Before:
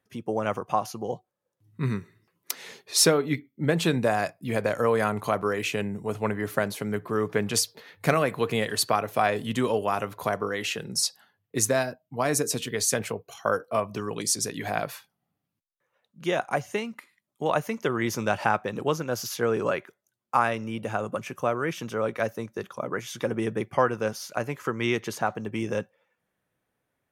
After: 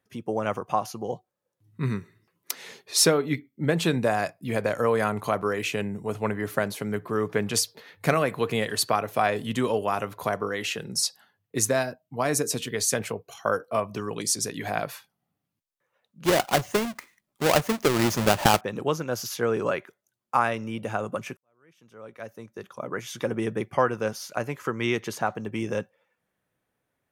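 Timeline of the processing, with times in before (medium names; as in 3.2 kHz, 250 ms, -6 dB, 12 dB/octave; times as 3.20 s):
16.25–18.61 s: square wave that keeps the level
21.37–23.07 s: fade in quadratic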